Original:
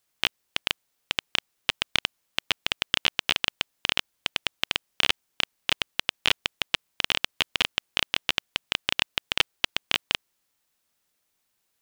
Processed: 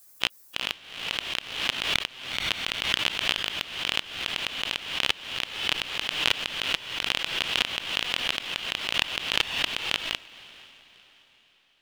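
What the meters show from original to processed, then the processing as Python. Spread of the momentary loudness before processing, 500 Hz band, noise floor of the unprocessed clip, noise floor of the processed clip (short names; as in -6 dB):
5 LU, 0.0 dB, -76 dBFS, -60 dBFS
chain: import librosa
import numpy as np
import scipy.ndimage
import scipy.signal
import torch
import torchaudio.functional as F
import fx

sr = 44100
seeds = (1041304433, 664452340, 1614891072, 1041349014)

y = fx.bin_expand(x, sr, power=1.5)
y = fx.echo_diffused(y, sr, ms=489, feedback_pct=43, wet_db=-16)
y = fx.pre_swell(y, sr, db_per_s=71.0)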